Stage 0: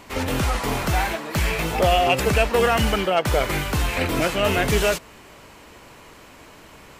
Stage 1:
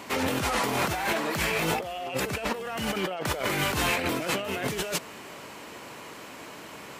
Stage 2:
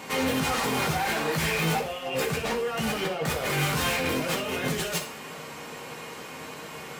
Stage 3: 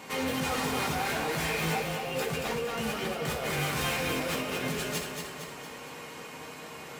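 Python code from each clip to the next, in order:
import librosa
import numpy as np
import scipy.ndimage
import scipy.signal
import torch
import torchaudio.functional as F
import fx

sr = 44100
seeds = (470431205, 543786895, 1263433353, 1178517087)

y1 = scipy.signal.sosfilt(scipy.signal.butter(2, 150.0, 'highpass', fs=sr, output='sos'), x)
y1 = fx.over_compress(y1, sr, threshold_db=-28.0, ratio=-1.0)
y1 = y1 * 10.0 ** (-1.5 / 20.0)
y2 = np.clip(y1, -10.0 ** (-27.0 / 20.0), 10.0 ** (-27.0 / 20.0))
y2 = fx.rev_fdn(y2, sr, rt60_s=0.46, lf_ratio=1.0, hf_ratio=1.0, size_ms=38.0, drr_db=-0.5)
y3 = fx.echo_feedback(y2, sr, ms=230, feedback_pct=52, wet_db=-5.5)
y3 = y3 * 10.0 ** (-5.0 / 20.0)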